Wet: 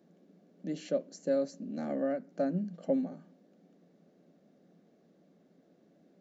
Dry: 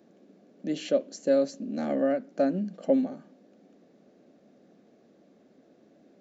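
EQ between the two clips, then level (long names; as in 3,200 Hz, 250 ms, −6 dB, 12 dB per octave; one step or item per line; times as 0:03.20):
parametric band 170 Hz +12 dB 0.21 octaves
notch filter 2,500 Hz, Q 25
dynamic equaliser 3,200 Hz, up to −6 dB, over −57 dBFS, Q 2.3
−6.5 dB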